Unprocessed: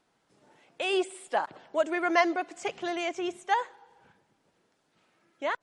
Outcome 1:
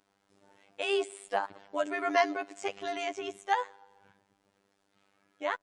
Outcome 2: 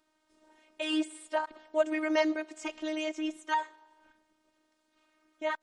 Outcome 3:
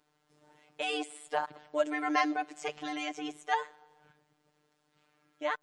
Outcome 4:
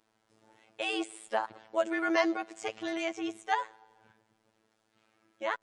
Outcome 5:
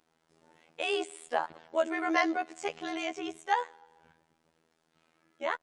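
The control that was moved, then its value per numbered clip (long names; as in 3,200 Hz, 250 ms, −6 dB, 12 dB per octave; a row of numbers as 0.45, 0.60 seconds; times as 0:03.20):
phases set to zero, frequency: 99, 310, 150, 110, 81 Hertz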